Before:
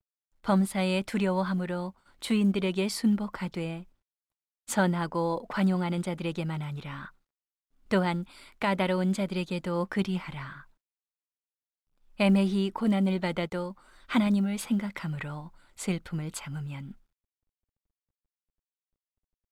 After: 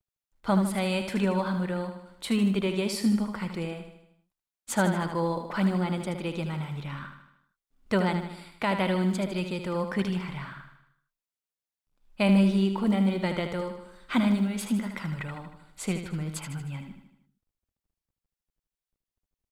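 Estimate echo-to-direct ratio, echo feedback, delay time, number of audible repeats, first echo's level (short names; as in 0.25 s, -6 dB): -6.5 dB, 53%, 77 ms, 5, -8.0 dB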